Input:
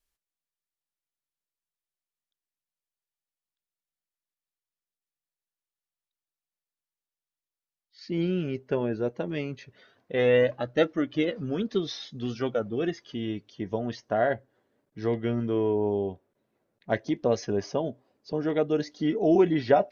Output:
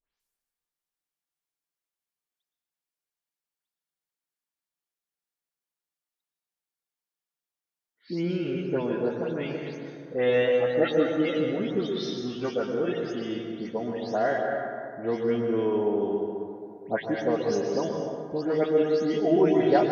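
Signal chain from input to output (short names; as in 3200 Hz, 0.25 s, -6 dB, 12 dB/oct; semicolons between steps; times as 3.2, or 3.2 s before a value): spectral delay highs late, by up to 0.197 s; low shelf 120 Hz -9.5 dB; on a send: reverb RT60 2.5 s, pre-delay 0.108 s, DRR 2 dB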